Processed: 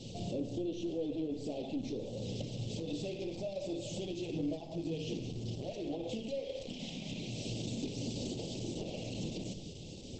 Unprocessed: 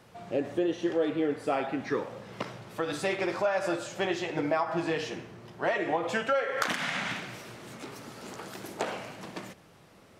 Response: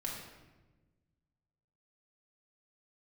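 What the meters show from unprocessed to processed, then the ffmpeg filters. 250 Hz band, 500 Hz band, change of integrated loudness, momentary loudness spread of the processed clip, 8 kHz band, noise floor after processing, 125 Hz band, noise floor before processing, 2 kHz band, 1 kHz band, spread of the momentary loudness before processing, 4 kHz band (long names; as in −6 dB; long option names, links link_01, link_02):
−4.0 dB, −9.5 dB, −8.5 dB, 4 LU, −3.5 dB, −47 dBFS, +3.0 dB, −56 dBFS, −21.0 dB, −20.5 dB, 15 LU, −4.5 dB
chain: -filter_complex "[0:a]acrossover=split=2900[link_01][link_02];[link_02]acompressor=threshold=-54dB:ratio=4:attack=1:release=60[link_03];[link_01][link_03]amix=inputs=2:normalize=0,equalizer=frequency=640:width_type=o:width=1.8:gain=-8.5,acompressor=threshold=-46dB:ratio=8,aeval=exprs='(tanh(224*val(0)+0.3)-tanh(0.3))/224':channel_layout=same,asuperstop=centerf=1400:order=8:qfactor=0.63,asplit=2[link_04][link_05];[1:a]atrim=start_sample=2205,afade=type=out:start_time=0.2:duration=0.01,atrim=end_sample=9261[link_06];[link_05][link_06]afir=irnorm=-1:irlink=0,volume=-4dB[link_07];[link_04][link_07]amix=inputs=2:normalize=0,volume=13dB" -ar 48000 -c:a libopus -b:a 12k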